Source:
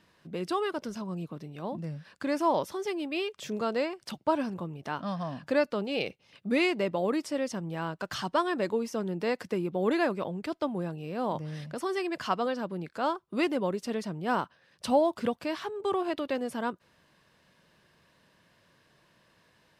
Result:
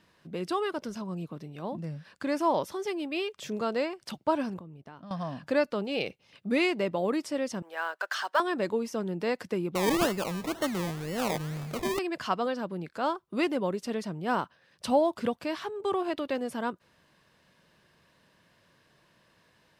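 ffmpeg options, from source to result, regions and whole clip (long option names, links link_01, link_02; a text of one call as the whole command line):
ffmpeg -i in.wav -filter_complex "[0:a]asettb=1/sr,asplit=3[link_01][link_02][link_03];[link_01]atrim=end=4.594[link_04];[link_02]atrim=start=4.59:end=5.11,asetpts=PTS-STARTPTS,afade=type=in:duration=0.004:curve=qsin,afade=type=out:start_time=0.516:duration=0.004:curve=qsin,lowshelf=frequency=490:gain=6.5,agate=range=-33dB:threshold=-34dB:ratio=3:release=100:detection=peak,acompressor=threshold=-45dB:ratio=5:attack=3.2:release=140:knee=1:detection=peak[link_05];[link_03]atrim=start=5.106[link_06];[link_04][link_05]acrossfade=duration=0.004:curve1=hsin:curve2=qsin[link_07];[link_07][link_06]acrossfade=duration=0.004:curve1=qsin:curve2=hsin,asettb=1/sr,asplit=3[link_08][link_09][link_10];[link_08]atrim=end=7.624[link_11];[link_09]atrim=start=7.62:end=8.4,asetpts=PTS-STARTPTS,afade=type=in:duration=0.004:curve=qsin,afade=type=out:start_time=0.776:duration=0.004:curve=qsin,highpass=frequency=500:width=0.5412,highpass=frequency=500:width=1.3066,equalizer=frequency=1600:width_type=o:width=0.52:gain=9,acrusher=bits=8:mode=log:mix=0:aa=0.000001[link_12];[link_10]atrim=start=8.396[link_13];[link_11][link_12]acrossfade=duration=0.004:curve1=hsin:curve2=qsin[link_14];[link_14][link_13]acrossfade=duration=0.004:curve1=qsin:curve2=hsin,asettb=1/sr,asplit=3[link_15][link_16][link_17];[link_15]atrim=end=9.754[link_18];[link_16]atrim=start=9.75:end=11.99,asetpts=PTS-STARTPTS,afade=type=in:duration=0.004:curve=qsin,afade=type=out:start_time=2.236:duration=0.004:curve=qsin,aeval=exprs='val(0)+0.5*0.0112*sgn(val(0))':channel_layout=same,acrusher=samples=25:mix=1:aa=0.000001:lfo=1:lforange=15:lforate=2[link_19];[link_17]atrim=start=11.986[link_20];[link_18][link_19]acrossfade=duration=0.004:curve1=hsin:curve2=qsin[link_21];[link_21][link_20]acrossfade=duration=0.004:curve1=qsin:curve2=hsin" out.wav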